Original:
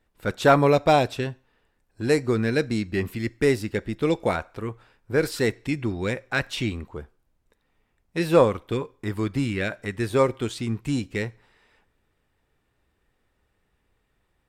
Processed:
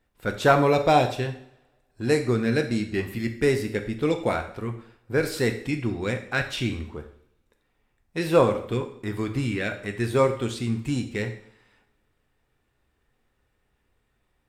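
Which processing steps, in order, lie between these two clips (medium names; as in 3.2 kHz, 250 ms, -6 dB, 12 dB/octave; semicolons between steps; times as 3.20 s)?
two-slope reverb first 0.58 s, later 1.6 s, from -24 dB, DRR 5.5 dB; trim -1.5 dB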